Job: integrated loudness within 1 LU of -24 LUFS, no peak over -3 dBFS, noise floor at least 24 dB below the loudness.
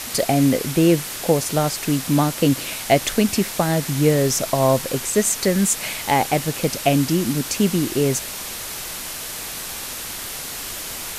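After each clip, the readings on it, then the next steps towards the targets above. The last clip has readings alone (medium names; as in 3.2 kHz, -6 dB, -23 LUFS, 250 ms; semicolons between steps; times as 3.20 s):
noise floor -31 dBFS; noise floor target -45 dBFS; loudness -20.5 LUFS; peak level -3.0 dBFS; loudness target -24.0 LUFS
-> noise print and reduce 14 dB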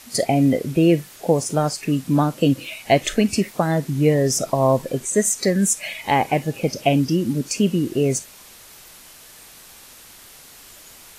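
noise floor -45 dBFS; loudness -20.0 LUFS; peak level -2.5 dBFS; loudness target -24.0 LUFS
-> trim -4 dB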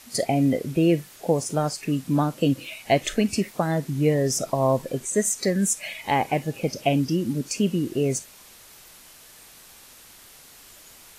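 loudness -24.0 LUFS; peak level -6.5 dBFS; noise floor -49 dBFS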